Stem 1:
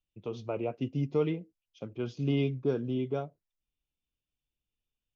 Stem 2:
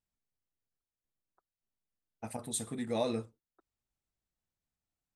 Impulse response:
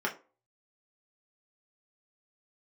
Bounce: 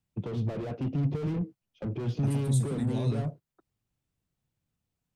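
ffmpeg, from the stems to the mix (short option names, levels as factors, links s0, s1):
-filter_complex "[0:a]agate=range=0.178:threshold=0.00251:ratio=16:detection=peak,highshelf=f=3200:g=-8,asplit=2[s0][s1];[s1]highpass=f=720:p=1,volume=100,asoftclip=type=tanh:threshold=0.141[s2];[s0][s2]amix=inputs=2:normalize=0,lowpass=f=1000:p=1,volume=0.501,volume=0.316[s3];[1:a]alimiter=level_in=1.88:limit=0.0631:level=0:latency=1:release=167,volume=0.531,volume=1.33[s4];[s3][s4]amix=inputs=2:normalize=0,equalizer=f=130:t=o:w=1.7:g=13.5,acrossover=split=220|3000[s5][s6][s7];[s6]acompressor=threshold=0.00631:ratio=1.5[s8];[s5][s8][s7]amix=inputs=3:normalize=0"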